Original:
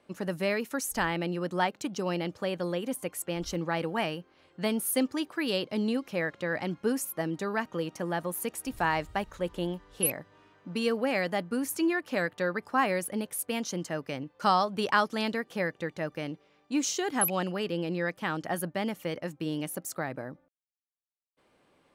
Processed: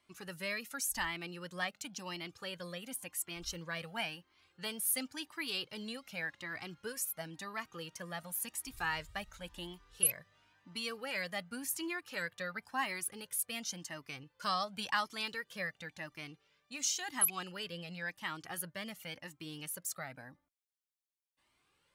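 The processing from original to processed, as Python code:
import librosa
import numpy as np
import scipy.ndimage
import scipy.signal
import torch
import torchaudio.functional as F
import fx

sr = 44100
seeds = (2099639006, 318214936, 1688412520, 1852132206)

y = fx.tone_stack(x, sr, knobs='5-5-5')
y = fx.comb_cascade(y, sr, direction='rising', hz=0.93)
y = F.gain(torch.from_numpy(y), 9.0).numpy()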